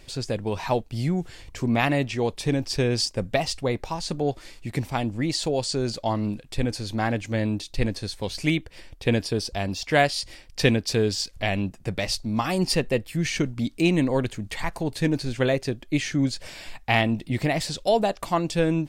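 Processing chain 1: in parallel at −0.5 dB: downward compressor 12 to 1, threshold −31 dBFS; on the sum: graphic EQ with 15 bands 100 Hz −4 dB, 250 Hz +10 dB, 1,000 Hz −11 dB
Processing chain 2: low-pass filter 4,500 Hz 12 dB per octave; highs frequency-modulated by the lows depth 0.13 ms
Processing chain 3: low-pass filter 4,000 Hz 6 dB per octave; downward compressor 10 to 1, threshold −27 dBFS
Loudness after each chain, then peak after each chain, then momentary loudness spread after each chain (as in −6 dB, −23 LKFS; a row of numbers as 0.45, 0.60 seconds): −21.0, −26.0, −33.5 LKFS; −2.0, −5.5, −16.0 dBFS; 8, 8, 4 LU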